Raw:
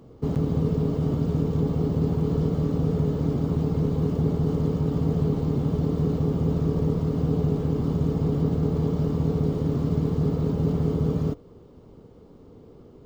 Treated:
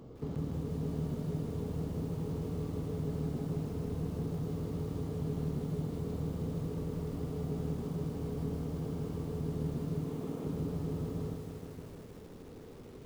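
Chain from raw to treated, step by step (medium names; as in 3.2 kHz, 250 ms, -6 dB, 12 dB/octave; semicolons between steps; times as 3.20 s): 6.67–8.77 s: hum notches 50/100/150/200/250/300/350/400/450 Hz; 10.04–10.47 s: Chebyshev band-pass 190–3500 Hz, order 5; compression 2:1, threshold -43 dBFS, peak gain reduction 13.5 dB; bit-crushed delay 157 ms, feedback 80%, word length 9-bit, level -6 dB; trim -1.5 dB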